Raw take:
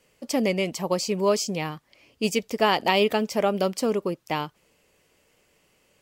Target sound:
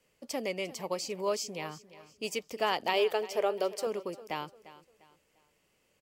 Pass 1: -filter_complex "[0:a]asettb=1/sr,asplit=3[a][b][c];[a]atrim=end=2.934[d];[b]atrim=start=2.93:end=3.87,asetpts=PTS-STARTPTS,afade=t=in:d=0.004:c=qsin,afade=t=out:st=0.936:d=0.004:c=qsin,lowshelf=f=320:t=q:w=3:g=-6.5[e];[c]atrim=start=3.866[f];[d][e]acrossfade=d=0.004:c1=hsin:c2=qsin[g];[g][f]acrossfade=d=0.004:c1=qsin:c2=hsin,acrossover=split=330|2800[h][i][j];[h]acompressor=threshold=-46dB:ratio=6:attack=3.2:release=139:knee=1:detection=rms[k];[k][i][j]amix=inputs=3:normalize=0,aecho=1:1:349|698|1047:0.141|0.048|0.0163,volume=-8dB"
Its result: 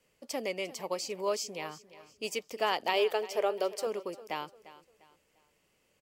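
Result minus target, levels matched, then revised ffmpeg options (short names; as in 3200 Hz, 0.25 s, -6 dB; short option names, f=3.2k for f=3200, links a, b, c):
compressor: peak gain reduction +6.5 dB
-filter_complex "[0:a]asettb=1/sr,asplit=3[a][b][c];[a]atrim=end=2.934[d];[b]atrim=start=2.93:end=3.87,asetpts=PTS-STARTPTS,afade=t=in:d=0.004:c=qsin,afade=t=out:st=0.936:d=0.004:c=qsin,lowshelf=f=320:t=q:w=3:g=-6.5[e];[c]atrim=start=3.866[f];[d][e]acrossfade=d=0.004:c1=hsin:c2=qsin[g];[g][f]acrossfade=d=0.004:c1=qsin:c2=hsin,acrossover=split=330|2800[h][i][j];[h]acompressor=threshold=-38dB:ratio=6:attack=3.2:release=139:knee=1:detection=rms[k];[k][i][j]amix=inputs=3:normalize=0,aecho=1:1:349|698|1047:0.141|0.048|0.0163,volume=-8dB"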